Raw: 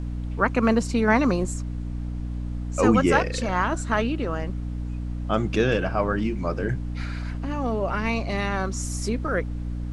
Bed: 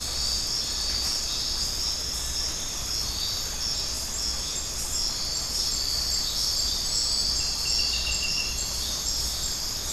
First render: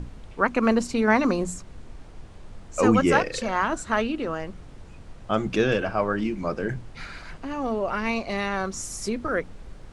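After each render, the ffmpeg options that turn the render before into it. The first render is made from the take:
-af "bandreject=f=60:t=h:w=6,bandreject=f=120:t=h:w=6,bandreject=f=180:t=h:w=6,bandreject=f=240:t=h:w=6,bandreject=f=300:t=h:w=6"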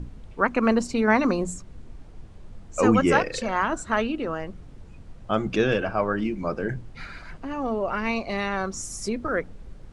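-af "afftdn=nr=6:nf=-45"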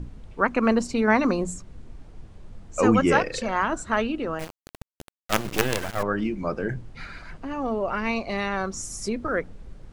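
-filter_complex "[0:a]asettb=1/sr,asplit=3[a][b][c];[a]atrim=end=4.394[d];[b]atrim=start=4.39:end=6.03,asetpts=PTS-STARTPTS,afade=t=in:d=0.004:c=qsin,afade=t=out:st=1.636:d=0.004:c=qsin,acrusher=bits=3:dc=4:mix=0:aa=0.000001[e];[c]atrim=start=6.026[f];[d][e]acrossfade=d=0.004:c1=hsin:c2=qsin[g];[g][f]acrossfade=d=0.004:c1=qsin:c2=hsin"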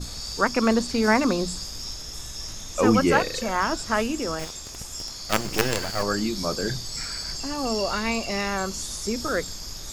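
-filter_complex "[1:a]volume=-7.5dB[a];[0:a][a]amix=inputs=2:normalize=0"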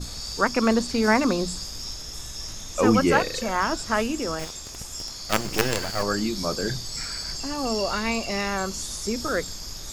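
-af anull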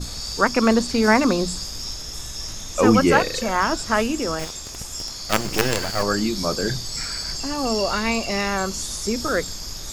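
-af "volume=3.5dB,alimiter=limit=-2dB:level=0:latency=1"

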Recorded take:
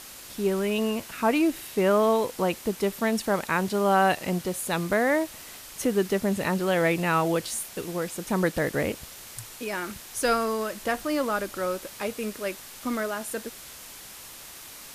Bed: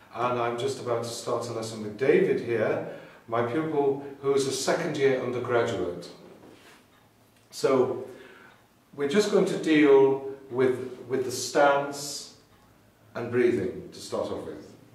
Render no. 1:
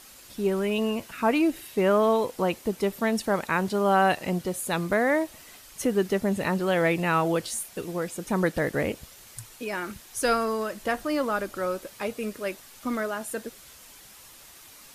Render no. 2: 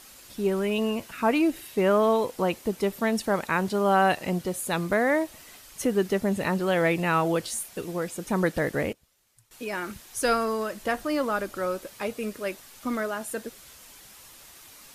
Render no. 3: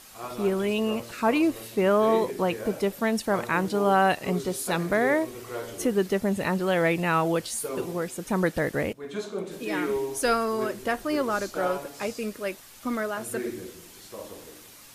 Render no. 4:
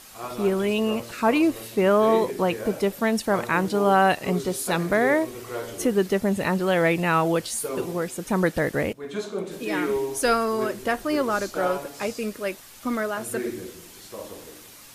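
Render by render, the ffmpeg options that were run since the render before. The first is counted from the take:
-af "afftdn=nr=7:nf=-44"
-filter_complex "[0:a]asplit=3[a][b][c];[a]atrim=end=8.93,asetpts=PTS-STARTPTS,afade=t=out:st=8.59:d=0.34:c=log:silence=0.1[d];[b]atrim=start=8.93:end=9.51,asetpts=PTS-STARTPTS,volume=-20dB[e];[c]atrim=start=9.51,asetpts=PTS-STARTPTS,afade=t=in:d=0.34:c=log:silence=0.1[f];[d][e][f]concat=n=3:v=0:a=1"
-filter_complex "[1:a]volume=-10.5dB[a];[0:a][a]amix=inputs=2:normalize=0"
-af "volume=2.5dB"

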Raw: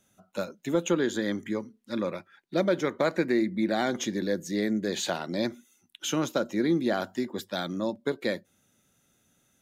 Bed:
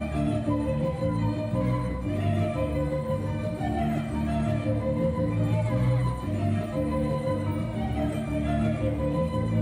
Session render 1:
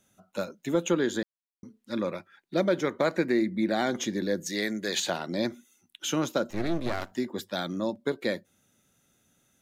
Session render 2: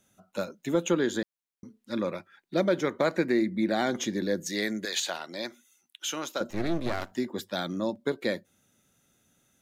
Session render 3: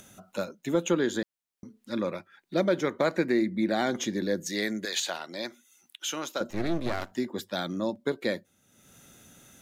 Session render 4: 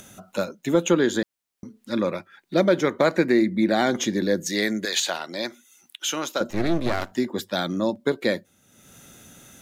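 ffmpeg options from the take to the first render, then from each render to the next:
-filter_complex "[0:a]asettb=1/sr,asplit=3[a][b][c];[a]atrim=end=4.464[d];[b]atrim=start=4.46:end=5,asetpts=PTS-STARTPTS,afade=t=in:d=0.004:c=qsin,afade=t=out:st=0.536:d=0.004:c=qsin,tiltshelf=f=660:g=-7[e];[c]atrim=start=4.996[f];[d][e]acrossfade=d=0.004:c1=hsin:c2=qsin[g];[g][f]acrossfade=d=0.004:c1=qsin:c2=hsin,asettb=1/sr,asplit=3[h][i][j];[h]atrim=end=6.504[k];[i]atrim=start=6.5:end=7.12,asetpts=PTS-STARTPTS,afade=t=in:d=0.004:c=qsin,afade=t=out:st=0.616:d=0.004:c=qsin,aeval=exprs='max(val(0),0)':c=same[l];[j]atrim=start=7.116[m];[k][l]acrossfade=d=0.004:c1=hsin:c2=qsin[n];[n][m]acrossfade=d=0.004:c1=qsin:c2=hsin,asplit=3[o][p][q];[o]atrim=end=1.23,asetpts=PTS-STARTPTS,afade=t=out:st=1.226:d=0.004:c=hsin[r];[p]atrim=start=1.23:end=1.63,asetpts=PTS-STARTPTS,volume=0[s];[q]atrim=start=1.63,asetpts=PTS-STARTPTS,afade=t=in:d=0.004:c=hsin[t];[r][s][t]concat=n=3:v=0:a=1"
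-filter_complex "[0:a]asettb=1/sr,asplit=3[a][b][c];[a]atrim=end=4.854[d];[b]atrim=start=4.85:end=6.41,asetpts=PTS-STARTPTS,afade=t=in:d=0.004:c=qsin,afade=t=out:st=1.556:d=0.004:c=qsin,highpass=f=940:p=1[e];[c]atrim=start=6.406[f];[d][e]acrossfade=d=0.004:c1=hsin:c2=qsin[g];[g][f]acrossfade=d=0.004:c1=qsin:c2=hsin"
-af "acompressor=mode=upward:threshold=-41dB:ratio=2.5"
-af "volume=6dB"

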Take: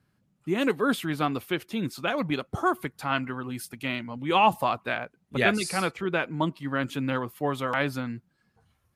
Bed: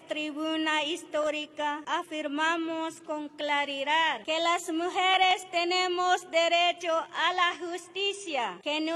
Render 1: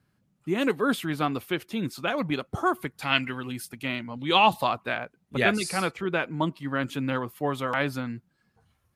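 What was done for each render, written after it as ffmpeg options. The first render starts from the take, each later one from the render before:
-filter_complex "[0:a]asplit=3[a][b][c];[a]afade=t=out:st=3.01:d=0.02[d];[b]highshelf=f=1.7k:t=q:w=1.5:g=8,afade=t=in:st=3.01:d=0.02,afade=t=out:st=3.51:d=0.02[e];[c]afade=t=in:st=3.51:d=0.02[f];[d][e][f]amix=inputs=3:normalize=0,asettb=1/sr,asplit=3[g][h][i];[g]atrim=end=4.164[j];[h]atrim=start=4.16:end=4.67,asetpts=PTS-STARTPTS,afade=t=in:d=0.004:c=qsin,afade=t=out:st=0.506:d=0.004:c=qsin,equalizer=f=3.9k:t=o:w=0.59:g=14[k];[i]atrim=start=4.666[l];[j][k]acrossfade=d=0.004:c1=hsin:c2=qsin[m];[m][l]acrossfade=d=0.004:c1=qsin:c2=hsin"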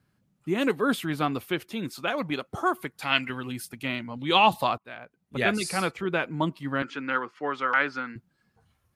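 -filter_complex "[0:a]asettb=1/sr,asplit=3[a][b][c];[a]atrim=end=1.724[d];[b]atrim=start=1.72:end=3.3,asetpts=PTS-STARTPTS,afade=t=in:d=0.004:c=qsin,afade=t=out:st=1.576:d=0.004:c=qsin,lowshelf=f=190:g=-7.5[e];[c]atrim=start=3.296[f];[d][e]acrossfade=d=0.004:c1=hsin:c2=qsin[g];[g][f]acrossfade=d=0.004:c1=qsin:c2=hsin,asettb=1/sr,asplit=3[h][i][j];[h]atrim=end=6.824[k];[i]atrim=start=6.82:end=8.16,asetpts=PTS-STARTPTS,afade=t=in:d=0.004:c=qsin,afade=t=out:st=1.336:d=0.004:c=qsin,highpass=340,equalizer=f=640:t=q:w=4:g=-8,equalizer=f=1.4k:t=q:w=4:g=9,equalizer=f=2k:t=q:w=4:g=4,equalizer=f=3.7k:t=q:w=4:g=-6,lowpass=f=5.6k:w=0.5412,lowpass=f=5.6k:w=1.3066[l];[j]atrim=start=8.156[m];[k][l]acrossfade=d=0.004:c1=hsin:c2=qsin[n];[n][m]acrossfade=d=0.004:c1=qsin:c2=hsin,asplit=2[o][p];[o]atrim=end=4.78,asetpts=PTS-STARTPTS,afade=t=out:st=4.776:d=0.004:c=hsin:silence=0.0944061[q];[p]atrim=start=4.78,asetpts=PTS-STARTPTS,afade=t=in:d=0.87:silence=0.0944061[r];[q][r]concat=n=2:v=0:a=1"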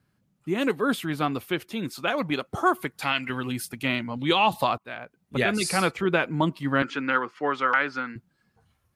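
-af "dynaudnorm=f=490:g=9:m=11.5dB,alimiter=limit=-10dB:level=0:latency=1:release=193"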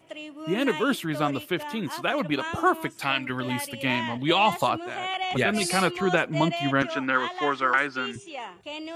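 -filter_complex "[1:a]volume=-6.5dB[a];[0:a][a]amix=inputs=2:normalize=0"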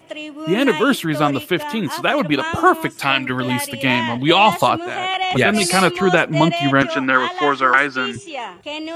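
-af "volume=8.5dB,alimiter=limit=-1dB:level=0:latency=1"

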